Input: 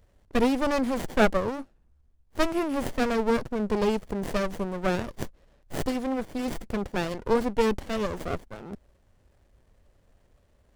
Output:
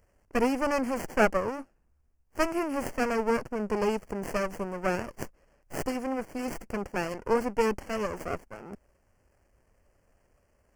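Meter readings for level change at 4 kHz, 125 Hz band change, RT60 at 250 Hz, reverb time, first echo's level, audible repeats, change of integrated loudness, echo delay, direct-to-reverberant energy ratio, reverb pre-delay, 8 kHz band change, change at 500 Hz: -6.0 dB, -5.5 dB, no reverb, no reverb, no echo, no echo, -2.5 dB, no echo, no reverb, no reverb, 0.0 dB, -2.0 dB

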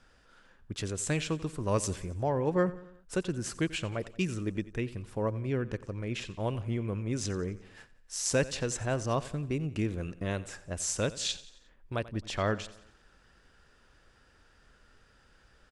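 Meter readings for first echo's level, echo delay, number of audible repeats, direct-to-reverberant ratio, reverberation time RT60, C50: -18.0 dB, 89 ms, 3, no reverb, no reverb, no reverb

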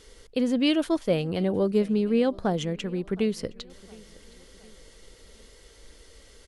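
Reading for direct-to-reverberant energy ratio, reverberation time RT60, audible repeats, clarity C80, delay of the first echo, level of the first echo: no reverb, no reverb, 2, no reverb, 715 ms, -23.5 dB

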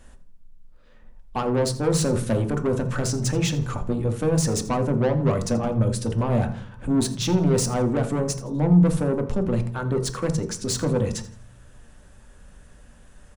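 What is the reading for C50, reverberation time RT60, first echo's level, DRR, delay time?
11.0 dB, 0.50 s, -17.0 dB, 4.5 dB, 83 ms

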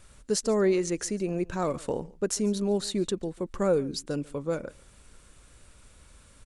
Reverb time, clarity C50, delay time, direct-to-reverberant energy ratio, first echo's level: no reverb, no reverb, 143 ms, no reverb, -23.0 dB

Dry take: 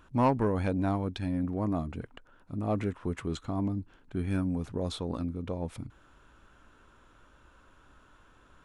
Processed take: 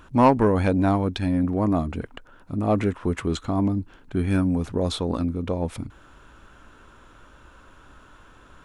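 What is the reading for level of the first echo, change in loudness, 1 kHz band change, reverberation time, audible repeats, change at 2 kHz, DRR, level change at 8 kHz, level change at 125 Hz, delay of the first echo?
no echo, +8.5 dB, +9.0 dB, no reverb, no echo, +9.0 dB, no reverb, +9.0 dB, +7.0 dB, no echo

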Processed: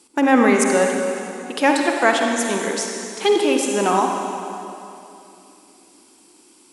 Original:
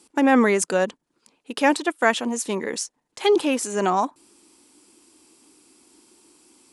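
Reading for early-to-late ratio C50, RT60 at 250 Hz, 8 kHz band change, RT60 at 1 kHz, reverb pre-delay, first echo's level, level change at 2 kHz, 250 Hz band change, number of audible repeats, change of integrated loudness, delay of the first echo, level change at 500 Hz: 2.0 dB, 3.0 s, +4.0 dB, 2.8 s, 40 ms, no echo, +4.0 dB, +3.5 dB, no echo, +3.0 dB, no echo, +3.5 dB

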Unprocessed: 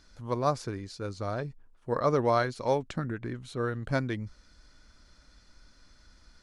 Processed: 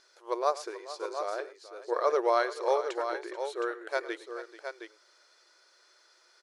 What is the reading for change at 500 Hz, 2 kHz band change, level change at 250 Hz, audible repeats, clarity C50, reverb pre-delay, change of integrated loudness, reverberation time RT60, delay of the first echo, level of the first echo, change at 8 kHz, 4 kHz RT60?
+0.5 dB, +1.0 dB, -8.0 dB, 3, no reverb, no reverb, -1.0 dB, no reverb, 106 ms, -18.5 dB, +1.0 dB, no reverb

